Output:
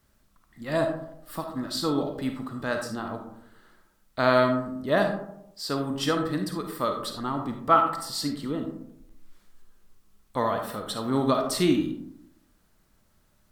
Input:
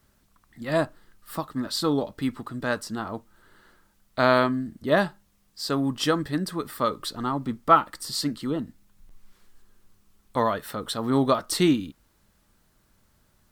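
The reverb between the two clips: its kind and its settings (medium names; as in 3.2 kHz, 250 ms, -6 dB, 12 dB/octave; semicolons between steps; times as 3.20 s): algorithmic reverb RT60 0.79 s, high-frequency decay 0.35×, pre-delay 10 ms, DRR 4 dB; trim -3 dB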